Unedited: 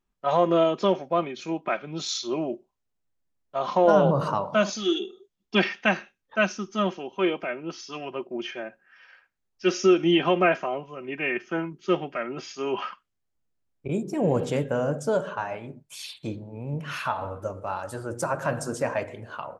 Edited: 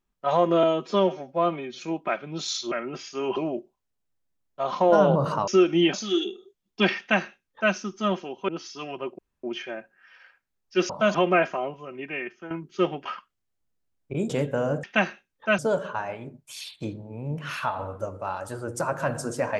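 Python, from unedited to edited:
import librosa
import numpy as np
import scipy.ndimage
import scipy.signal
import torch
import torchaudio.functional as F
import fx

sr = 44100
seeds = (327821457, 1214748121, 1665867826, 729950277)

y = fx.edit(x, sr, fx.stretch_span(start_s=0.63, length_s=0.79, factor=1.5),
    fx.swap(start_s=4.43, length_s=0.25, other_s=9.78, other_length_s=0.46),
    fx.duplicate(start_s=5.73, length_s=0.75, to_s=15.01),
    fx.cut(start_s=7.23, length_s=0.39),
    fx.insert_room_tone(at_s=8.32, length_s=0.25),
    fx.fade_out_to(start_s=10.88, length_s=0.72, floor_db=-13.5),
    fx.move(start_s=12.15, length_s=0.65, to_s=2.32),
    fx.cut(start_s=14.04, length_s=0.43), tone=tone)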